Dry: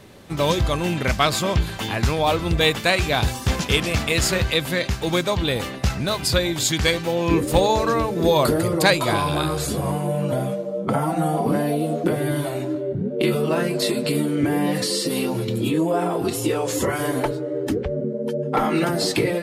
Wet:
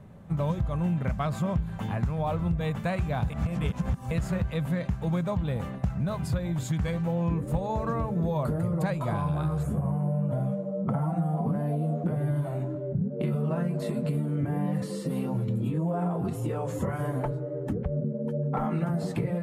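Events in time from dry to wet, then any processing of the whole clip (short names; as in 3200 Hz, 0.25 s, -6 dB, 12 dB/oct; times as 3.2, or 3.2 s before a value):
3.3–4.11 reverse
9.63–10.31 bell 4300 Hz -14 dB 0.79 oct
whole clip: EQ curve 110 Hz 0 dB, 170 Hz +5 dB, 330 Hz -13 dB, 600 Hz -6 dB, 1200 Hz -8 dB, 4800 Hz -25 dB, 7000 Hz -19 dB; compressor, threshold -24 dBFS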